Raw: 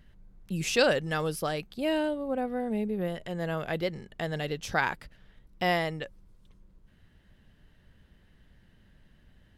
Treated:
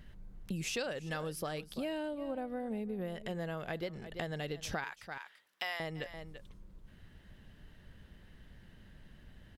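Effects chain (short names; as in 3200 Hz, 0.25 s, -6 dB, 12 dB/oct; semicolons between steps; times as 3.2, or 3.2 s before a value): 4.84–5.8 HPF 1100 Hz 12 dB/oct; echo 0.338 s -18.5 dB; compressor 5:1, threshold -40 dBFS, peak gain reduction 19.5 dB; gain +3.5 dB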